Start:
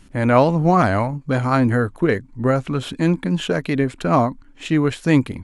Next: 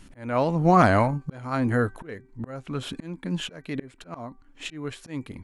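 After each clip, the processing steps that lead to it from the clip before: auto swell 0.721 s; bell 73 Hz -2 dB 2.8 oct; de-hum 386.8 Hz, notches 6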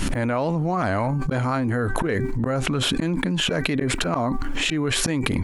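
fast leveller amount 100%; gain -8 dB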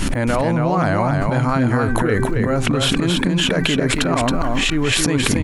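echo 0.273 s -4 dB; gain +4 dB

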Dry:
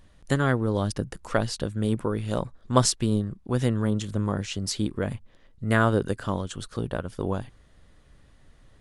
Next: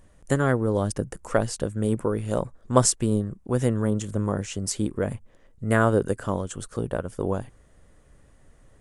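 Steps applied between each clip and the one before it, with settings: graphic EQ 500/4000/8000 Hz +4/-9/+7 dB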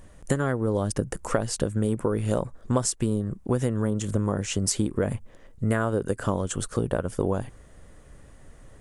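compressor 12:1, threshold -26 dBFS, peak gain reduction 15 dB; gain +6 dB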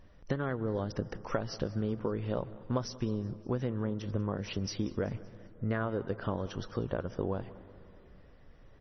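feedback echo 0.19 s, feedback 52%, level -21 dB; reverb RT60 2.9 s, pre-delay 0.118 s, DRR 18.5 dB; gain -7.5 dB; MP3 24 kbps 24000 Hz

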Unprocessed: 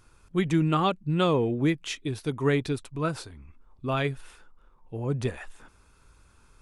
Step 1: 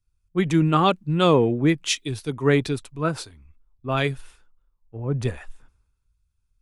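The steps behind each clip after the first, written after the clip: in parallel at -2 dB: limiter -22 dBFS, peak gain reduction 10 dB; on the sum: three-band expander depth 100%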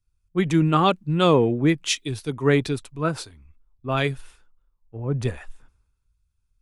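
nothing audible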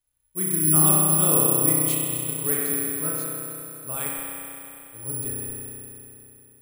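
requantised 12-bit, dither triangular; spring tank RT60 3.1 s, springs 32 ms, chirp 50 ms, DRR -5 dB; careless resampling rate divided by 4×, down filtered, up zero stuff; gain -14 dB

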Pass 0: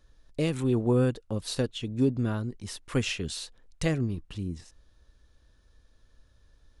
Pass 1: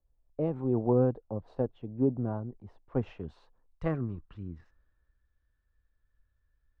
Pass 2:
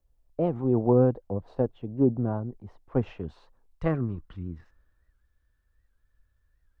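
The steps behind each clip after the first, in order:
low-pass sweep 790 Hz -> 1700 Hz, 2.92–4.93; three-band expander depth 40%; gain -5 dB
record warp 78 rpm, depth 160 cents; gain +4.5 dB

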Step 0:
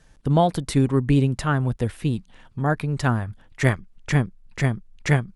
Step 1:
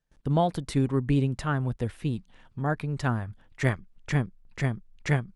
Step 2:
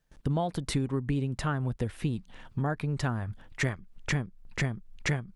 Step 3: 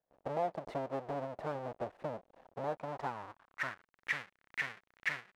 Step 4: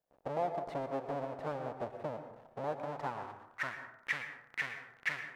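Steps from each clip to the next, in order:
gate with hold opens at -43 dBFS; high shelf 8500 Hz -6 dB; gain -5.5 dB
compressor, threshold -33 dBFS, peak gain reduction 14 dB; gain +6.5 dB
half-waves squared off; band-pass sweep 650 Hz -> 1900 Hz, 2.73–4.02; gain -2.5 dB
plate-style reverb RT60 0.76 s, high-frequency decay 0.4×, pre-delay 0.1 s, DRR 8 dB

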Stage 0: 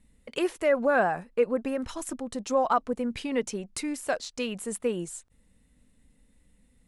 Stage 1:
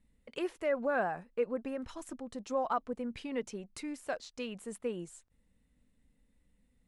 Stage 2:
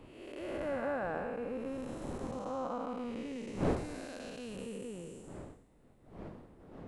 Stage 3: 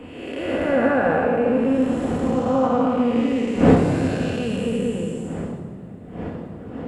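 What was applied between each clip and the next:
high shelf 7400 Hz -9.5 dB; gain -8 dB
time blur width 0.471 s; wind noise 430 Hz -48 dBFS; gain +3.5 dB
reverb RT60 2.5 s, pre-delay 3 ms, DRR 2 dB; gain +6.5 dB

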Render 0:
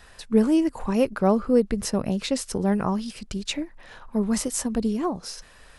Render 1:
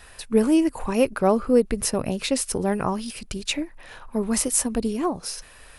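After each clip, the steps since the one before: thirty-one-band EQ 200 Hz -6 dB, 2500 Hz +4 dB, 10000 Hz +10 dB; gain +2 dB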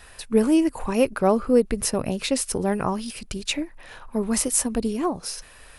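nothing audible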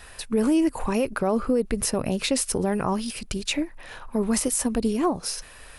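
limiter -16 dBFS, peak gain reduction 9.5 dB; gain +2 dB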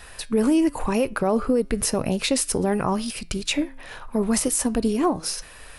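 flange 0.93 Hz, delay 5.7 ms, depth 1.9 ms, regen +90%; gain +6.5 dB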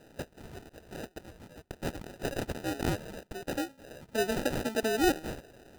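high-pass sweep 3600 Hz -> 360 Hz, 0.74–3.81; sample-and-hold 40×; gain -9 dB

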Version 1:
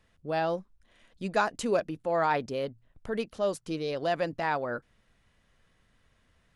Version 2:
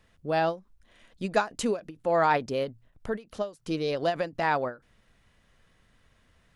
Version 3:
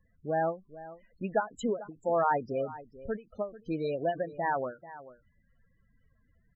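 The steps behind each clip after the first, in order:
ending taper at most 230 dB/s; gain +3.5 dB
echo 0.439 s -16.5 dB; loudest bins only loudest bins 16; gain -3 dB

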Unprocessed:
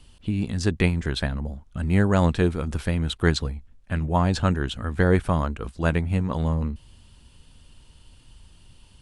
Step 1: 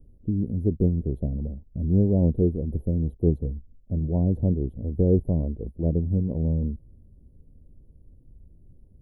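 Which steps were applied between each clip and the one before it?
inverse Chebyshev band-stop 1200–8100 Hz, stop band 50 dB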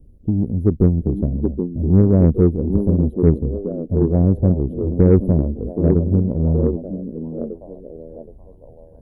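delay with a stepping band-pass 0.774 s, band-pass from 290 Hz, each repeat 0.7 oct, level -2 dB; added harmonics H 7 -31 dB, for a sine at -8.5 dBFS; gain +7.5 dB

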